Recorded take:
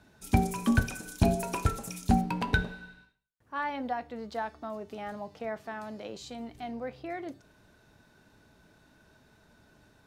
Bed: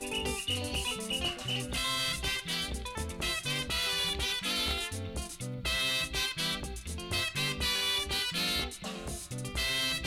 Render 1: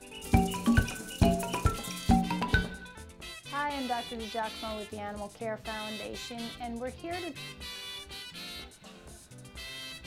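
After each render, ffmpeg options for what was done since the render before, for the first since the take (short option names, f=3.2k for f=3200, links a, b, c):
-filter_complex "[1:a]volume=-11dB[a];[0:a][a]amix=inputs=2:normalize=0"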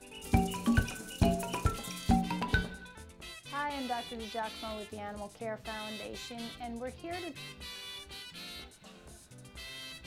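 -af "volume=-3dB"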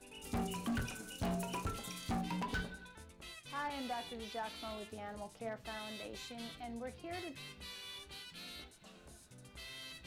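-af "flanger=delay=2.9:depth=8.3:regen=82:speed=0.34:shape=sinusoidal,asoftclip=type=hard:threshold=-33.5dB"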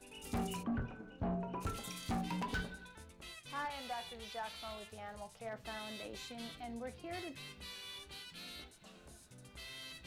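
-filter_complex "[0:a]asplit=3[a][b][c];[a]afade=t=out:st=0.62:d=0.02[d];[b]lowpass=1.2k,afade=t=in:st=0.62:d=0.02,afade=t=out:st=1.6:d=0.02[e];[c]afade=t=in:st=1.6:d=0.02[f];[d][e][f]amix=inputs=3:normalize=0,asettb=1/sr,asplit=3[g][h][i];[g]atrim=end=3.654[j];[h]atrim=start=3.65:end=5.53,asetpts=PTS-STARTPTS,afade=t=in:d=0.004:c=qsin,afade=t=out:st=1.876:d=0.004:c=qsin,equalizer=f=290:w=1.6:g=-12.5[k];[i]atrim=start=5.526[l];[j][k]acrossfade=d=0.004:c1=hsin:c2=qsin[m];[m][l]acrossfade=d=0.004:c1=qsin:c2=hsin"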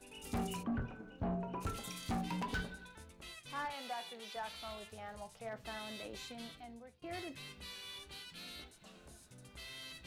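-filter_complex "[0:a]asettb=1/sr,asplit=3[a][b][c];[a]atrim=end=3.734[d];[b]atrim=start=3.73:end=4.36,asetpts=PTS-STARTPTS,afade=t=in:d=0.004:c=qsin,afade=t=out:st=0.626:d=0.004:c=qsin,highpass=f=190:w=0.5412,highpass=f=190:w=1.3066[e];[c]atrim=start=4.356[f];[d][e]acrossfade=d=0.004:c1=hsin:c2=qsin[g];[g][f]acrossfade=d=0.004:c1=qsin:c2=hsin,asplit=2[h][i];[h]atrim=end=7.02,asetpts=PTS-STARTPTS,afade=t=out:st=6.3:d=0.72:silence=0.0707946[j];[i]atrim=start=7.02,asetpts=PTS-STARTPTS,afade=t=in:d=0.004:c=hsin:silence=0.0707946[k];[j][k]concat=n=2:v=0:a=1"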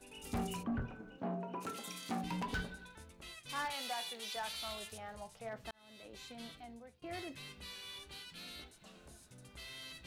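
-filter_complex "[0:a]asettb=1/sr,asplit=3[a][b][c];[a]atrim=end=1.184[d];[b]atrim=start=1.18:end=2.24,asetpts=PTS-STARTPTS,afade=t=in:d=0.004:c=qsin,afade=t=out:st=1.056:d=0.004:c=qsin,highpass=f=180:w=0.5412,highpass=f=180:w=1.3066[e];[c]atrim=start=2.236[f];[d][e]acrossfade=d=0.004:c1=hsin:c2=qsin[g];[g][f]acrossfade=d=0.004:c1=qsin:c2=hsin,asettb=1/sr,asplit=3[h][i][j];[h]atrim=end=3.494[k];[i]atrim=start=3.49:end=4.98,asetpts=PTS-STARTPTS,afade=t=in:d=0.004:c=qsin,afade=t=out:st=1.486:d=0.004:c=qsin,highshelf=f=2.7k:g=10[l];[j]atrim=start=4.976[m];[k][l]acrossfade=d=0.004:c1=hsin:c2=qsin[n];[n][m]acrossfade=d=0.004:c1=qsin:c2=hsin,asplit=2[o][p];[o]atrim=end=5.71,asetpts=PTS-STARTPTS,afade=t=out:st=5.706:d=0.004:c=hsin[q];[p]atrim=start=5.71,asetpts=PTS-STARTPTS,afade=t=in:d=0.78[r];[q][r]concat=n=2:v=0:a=1"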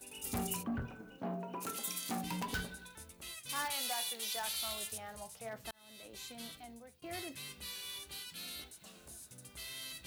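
-af "highpass=46,aemphasis=mode=production:type=50fm"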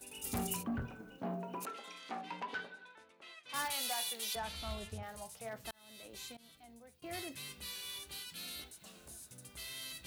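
-filter_complex "[0:a]asettb=1/sr,asplit=3[a][b][c];[a]atrim=end=1.654[d];[b]atrim=start=1.65:end=3.54,asetpts=PTS-STARTPTS,afade=t=in:d=0.004:c=qsin,afade=t=out:st=1.886:d=0.004:c=qsin,highpass=420,lowpass=2.6k[e];[c]atrim=start=3.536[f];[d][e]acrossfade=d=0.004:c1=hsin:c2=qsin[g];[g][f]acrossfade=d=0.004:c1=qsin:c2=hsin,asettb=1/sr,asplit=3[h][i][j];[h]atrim=end=4.354[k];[i]atrim=start=4.35:end=5.03,asetpts=PTS-STARTPTS,afade=t=in:d=0.004:c=qsin,afade=t=out:st=0.676:d=0.004:c=qsin,aemphasis=mode=reproduction:type=riaa[l];[j]atrim=start=5.026[m];[k][l]acrossfade=d=0.004:c1=hsin:c2=qsin[n];[n][m]acrossfade=d=0.004:c1=qsin:c2=hsin,asplit=2[o][p];[o]atrim=end=6.37,asetpts=PTS-STARTPTS,afade=t=out:st=6.366:d=0.004:c=hsin:silence=0.0944061[q];[p]atrim=start=6.37,asetpts=PTS-STARTPTS,afade=t=in:d=0.7:silence=0.0944061[r];[q][r]concat=n=2:v=0:a=1"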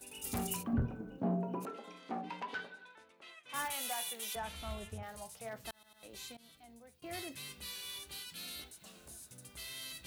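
-filter_complex "[0:a]asettb=1/sr,asplit=3[a][b][c];[a]atrim=end=0.734[d];[b]atrim=start=0.73:end=2.3,asetpts=PTS-STARTPTS,afade=t=in:d=0.004:c=qsin,afade=t=out:st=1.566:d=0.004:c=qsin,tiltshelf=f=970:g=8.5[e];[c]atrim=start=2.296[f];[d][e]acrossfade=d=0.004:c1=hsin:c2=qsin[g];[g][f]acrossfade=d=0.004:c1=qsin:c2=hsin,asettb=1/sr,asplit=3[h][i][j];[h]atrim=end=3.304[k];[i]atrim=start=3.3:end=5.03,asetpts=PTS-STARTPTS,afade=t=in:d=0.004:c=qsin,afade=t=out:st=1.726:d=0.004:c=qsin,equalizer=f=4.5k:w=2.5:g=-9[l];[j]atrim=start=5.026[m];[k][l]acrossfade=d=0.004:c1=hsin:c2=qsin[n];[n][m]acrossfade=d=0.004:c1=qsin:c2=hsin,asplit=4[o][p][q][r];[o]atrim=end=5.832[s];[p]atrim=start=5.728:end=5.832[t];[q]atrim=start=5.728:end=5.832[u];[r]atrim=start=6.028[v];[s][t]acrossfade=d=0.004:c1=hsin:c2=hsin[w];[w][u]acrossfade=d=0.004:c1=hsin:c2=hsin[x];[x][v]acrossfade=d=0.004:c1=hsin:c2=hsin"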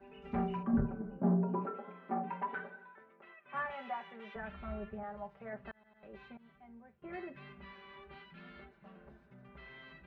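-af "lowpass=f=1.9k:w=0.5412,lowpass=f=1.9k:w=1.3066,aecho=1:1:5.1:0.91"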